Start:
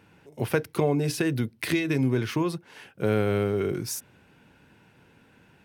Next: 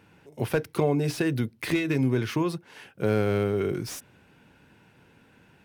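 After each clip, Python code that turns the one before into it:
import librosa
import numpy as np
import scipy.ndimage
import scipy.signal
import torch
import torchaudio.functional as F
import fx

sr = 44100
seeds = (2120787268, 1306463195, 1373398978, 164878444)

y = fx.slew_limit(x, sr, full_power_hz=110.0)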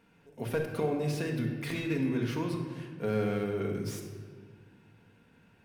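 y = fx.room_shoebox(x, sr, seeds[0], volume_m3=1800.0, walls='mixed', distance_m=1.7)
y = y * librosa.db_to_amplitude(-8.5)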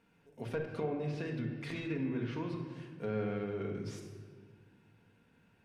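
y = fx.env_lowpass_down(x, sr, base_hz=3000.0, full_db=-26.5)
y = y * librosa.db_to_amplitude(-5.5)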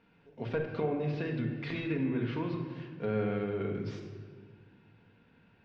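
y = scipy.signal.sosfilt(scipy.signal.butter(4, 4500.0, 'lowpass', fs=sr, output='sos'), x)
y = y * librosa.db_to_amplitude(4.0)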